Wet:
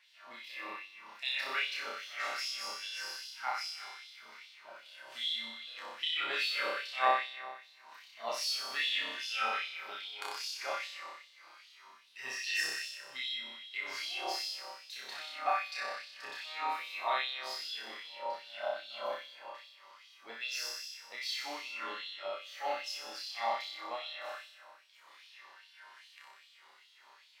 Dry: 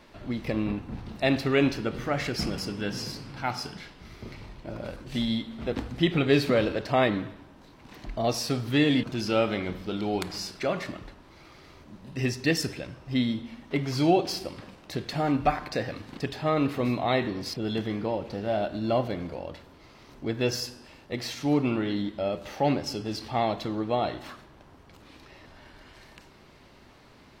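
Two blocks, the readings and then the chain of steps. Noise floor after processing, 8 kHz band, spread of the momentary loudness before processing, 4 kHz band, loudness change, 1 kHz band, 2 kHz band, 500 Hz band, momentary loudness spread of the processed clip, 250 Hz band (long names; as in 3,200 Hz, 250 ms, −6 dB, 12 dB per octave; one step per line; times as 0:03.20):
−61 dBFS, −4.5 dB, 15 LU, −1.0 dB, −8.0 dB, −5.0 dB, −2.0 dB, −15.5 dB, 21 LU, −32.5 dB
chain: resonators tuned to a chord D#2 sus4, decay 0.26 s
flutter between parallel walls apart 5.3 metres, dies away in 1.3 s
auto-filter high-pass sine 2.5 Hz 910–3,500 Hz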